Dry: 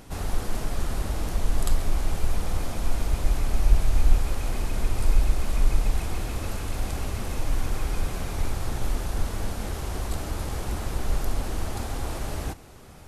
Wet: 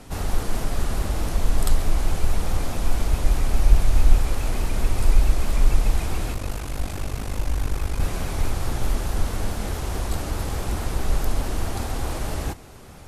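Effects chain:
0:06.33–0:08.00: ring modulation 25 Hz
pitch modulation by a square or saw wave saw up 4.7 Hz, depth 100 cents
level +3.5 dB

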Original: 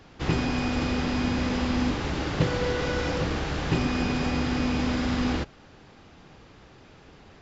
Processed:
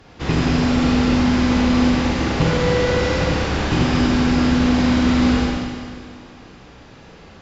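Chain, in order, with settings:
harmonic generator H 2 −15 dB, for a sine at −10 dBFS
four-comb reverb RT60 2 s, combs from 33 ms, DRR −3 dB
level +3.5 dB

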